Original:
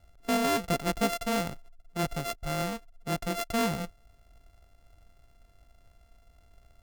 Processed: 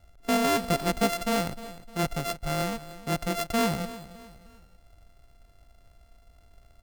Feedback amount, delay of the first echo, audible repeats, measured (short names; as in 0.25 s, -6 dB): 39%, 0.305 s, 3